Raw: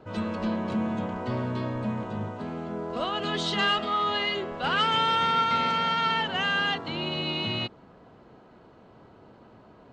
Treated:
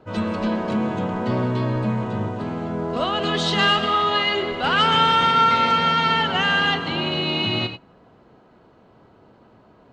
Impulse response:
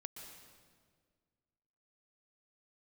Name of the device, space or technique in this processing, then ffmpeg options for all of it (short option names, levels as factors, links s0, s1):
keyed gated reverb: -filter_complex "[0:a]asplit=3[s0][s1][s2];[1:a]atrim=start_sample=2205[s3];[s1][s3]afir=irnorm=-1:irlink=0[s4];[s2]apad=whole_len=437789[s5];[s4][s5]sidechaingate=range=0.0224:threshold=0.01:ratio=16:detection=peak,volume=2[s6];[s0][s6]amix=inputs=2:normalize=0"